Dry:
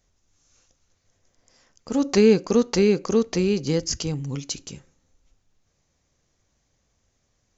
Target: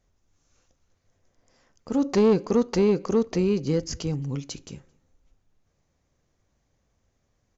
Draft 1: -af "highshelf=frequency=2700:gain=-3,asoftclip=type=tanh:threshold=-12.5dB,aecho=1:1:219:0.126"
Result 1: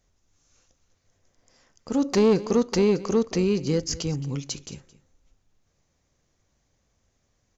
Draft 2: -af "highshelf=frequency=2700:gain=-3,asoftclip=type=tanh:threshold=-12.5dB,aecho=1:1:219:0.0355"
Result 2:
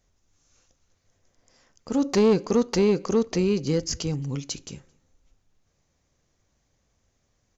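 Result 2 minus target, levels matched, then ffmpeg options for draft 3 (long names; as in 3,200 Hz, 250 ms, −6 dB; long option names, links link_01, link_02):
4,000 Hz band +4.5 dB
-af "highshelf=frequency=2700:gain=-9.5,asoftclip=type=tanh:threshold=-12.5dB,aecho=1:1:219:0.0355"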